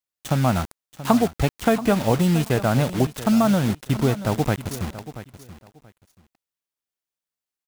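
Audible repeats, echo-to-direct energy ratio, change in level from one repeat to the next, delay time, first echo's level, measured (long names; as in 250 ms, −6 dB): 2, −14.5 dB, −14.0 dB, 681 ms, −14.5 dB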